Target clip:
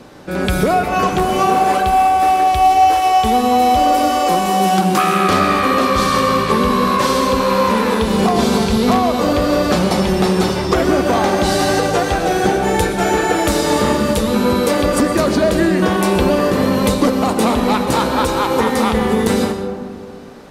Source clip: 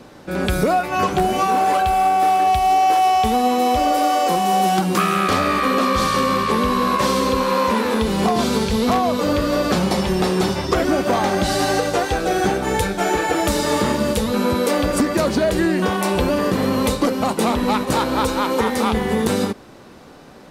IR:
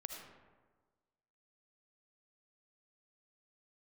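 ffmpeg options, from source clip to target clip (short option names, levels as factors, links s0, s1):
-filter_complex "[0:a]asplit=2[s0][s1];[1:a]atrim=start_sample=2205,asetrate=27783,aresample=44100[s2];[s1][s2]afir=irnorm=-1:irlink=0,volume=1.33[s3];[s0][s3]amix=inputs=2:normalize=0,volume=0.668"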